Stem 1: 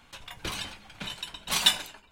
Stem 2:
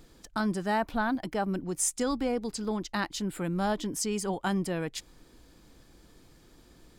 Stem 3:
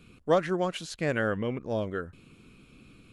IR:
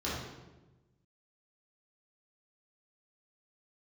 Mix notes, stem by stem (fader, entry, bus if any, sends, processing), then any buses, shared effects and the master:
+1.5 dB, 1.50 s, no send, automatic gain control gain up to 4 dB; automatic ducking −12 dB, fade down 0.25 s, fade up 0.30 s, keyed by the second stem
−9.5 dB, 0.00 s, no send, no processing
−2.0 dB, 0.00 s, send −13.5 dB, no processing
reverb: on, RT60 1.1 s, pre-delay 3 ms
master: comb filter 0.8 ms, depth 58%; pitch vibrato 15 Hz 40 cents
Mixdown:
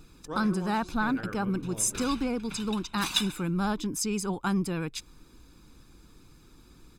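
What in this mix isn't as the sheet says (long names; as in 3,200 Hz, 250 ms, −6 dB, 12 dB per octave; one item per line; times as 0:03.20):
stem 2 −9.5 dB → −0.5 dB
stem 3 −2.0 dB → −13.5 dB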